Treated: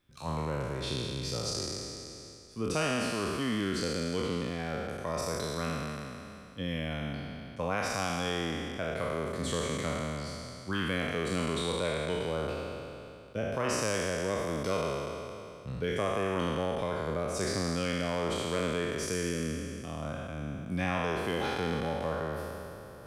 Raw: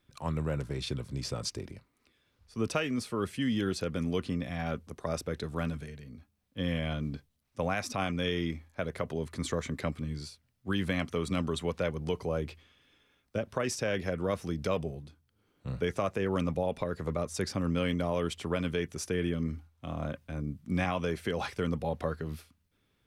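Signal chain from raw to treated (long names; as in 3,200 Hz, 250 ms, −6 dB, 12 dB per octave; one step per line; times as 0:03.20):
peak hold with a decay on every bin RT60 2.67 s
reversed playback
upward compression, threshold −39 dBFS
reversed playback
level −4 dB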